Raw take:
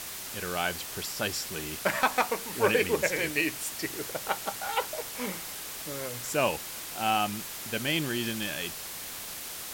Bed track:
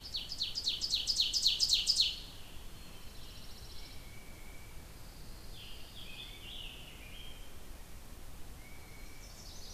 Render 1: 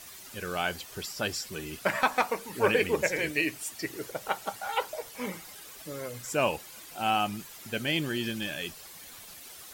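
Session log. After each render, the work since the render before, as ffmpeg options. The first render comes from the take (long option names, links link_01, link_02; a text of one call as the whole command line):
ffmpeg -i in.wav -af "afftdn=noise_reduction=11:noise_floor=-40" out.wav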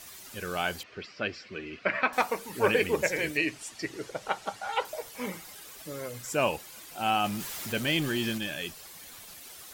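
ffmpeg -i in.wav -filter_complex "[0:a]asettb=1/sr,asplit=3[link_01][link_02][link_03];[link_01]atrim=end=0.834[link_04];[link_02]atrim=start=0.83:end=2.13,asetpts=PTS-STARTPTS,afade=type=in:duration=0.004:curve=qsin,afade=type=out:start_time=1.296:duration=0.004:curve=qsin,highpass=110,equalizer=frequency=150:width_type=q:width=4:gain=-8,equalizer=frequency=870:width_type=q:width=4:gain=-10,equalizer=frequency=2300:width_type=q:width=4:gain=5,equalizer=frequency=3500:width_type=q:width=4:gain=-7,lowpass=frequency=3900:width=0.5412,lowpass=frequency=3900:width=1.3066[link_05];[link_03]atrim=start=2.126[link_06];[link_04][link_05]acrossfade=duration=0.004:curve1=hsin:curve2=qsin[link_07];[link_07][link_06]acrossfade=duration=0.004:curve1=qsin:curve2=hsin,asettb=1/sr,asplit=3[link_08][link_09][link_10];[link_08]atrim=end=3.374[link_11];[link_09]atrim=start=3.37:end=4.85,asetpts=PTS-STARTPTS,afade=type=in:duration=0.004:curve=qsin,afade=type=out:start_time=1.476:duration=0.004:curve=qsin,lowpass=7200[link_12];[link_10]atrim=start=4.846[link_13];[link_11][link_12]acrossfade=duration=0.004:curve1=hsin:curve2=qsin[link_14];[link_14][link_13]acrossfade=duration=0.004:curve1=qsin:curve2=hsin,asettb=1/sr,asplit=3[link_15][link_16][link_17];[link_15]atrim=end=7.244[link_18];[link_16]atrim=start=7.24:end=8.38,asetpts=PTS-STARTPTS,afade=type=in:duration=0.004:curve=qsin,afade=type=out:start_time=1.136:duration=0.004:curve=qsin,aeval=exprs='val(0)+0.5*0.0168*sgn(val(0))':channel_layout=same[link_19];[link_17]atrim=start=8.376[link_20];[link_18][link_19]acrossfade=duration=0.004:curve1=hsin:curve2=qsin[link_21];[link_21][link_20]acrossfade=duration=0.004:curve1=qsin:curve2=hsin" out.wav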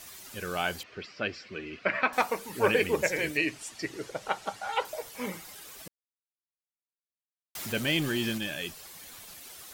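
ffmpeg -i in.wav -filter_complex "[0:a]asplit=3[link_01][link_02][link_03];[link_01]atrim=end=5.88,asetpts=PTS-STARTPTS,afade=type=out:start_time=5.876:duration=0.004:curve=hsin[link_04];[link_02]atrim=start=5.88:end=7.55,asetpts=PTS-STARTPTS,volume=0[link_05];[link_03]atrim=start=7.55,asetpts=PTS-STARTPTS,afade=type=in:duration=0.004:curve=hsin[link_06];[link_04][link_05][link_06]concat=n=3:v=0:a=1" out.wav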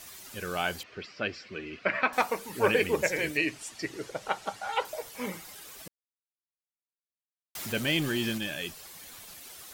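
ffmpeg -i in.wav -af anull out.wav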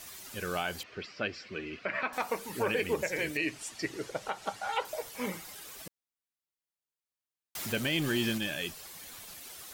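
ffmpeg -i in.wav -af "alimiter=limit=-19.5dB:level=0:latency=1:release=133" out.wav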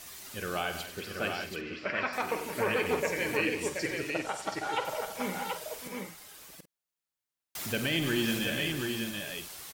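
ffmpeg -i in.wav -filter_complex "[0:a]asplit=2[link_01][link_02];[link_02]adelay=48,volume=-11.5dB[link_03];[link_01][link_03]amix=inputs=2:normalize=0,aecho=1:1:96|184|630|729:0.266|0.266|0.237|0.596" out.wav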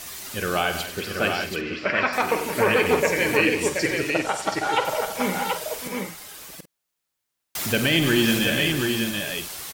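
ffmpeg -i in.wav -af "volume=9.5dB" out.wav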